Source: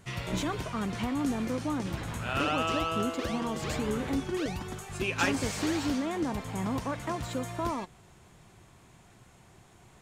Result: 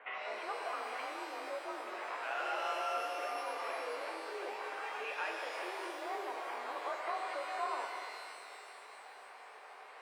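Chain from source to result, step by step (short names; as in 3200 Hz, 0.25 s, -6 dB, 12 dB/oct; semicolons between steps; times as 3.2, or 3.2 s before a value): dynamic EQ 1700 Hz, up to -4 dB, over -42 dBFS, Q 0.79; compressor, threshold -38 dBFS, peak gain reduction 13 dB; soft clip -36.5 dBFS, distortion -16 dB; mistuned SSB +53 Hz 480–2500 Hz; shimmer reverb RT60 2.4 s, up +12 st, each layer -8 dB, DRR 1.5 dB; gain +7 dB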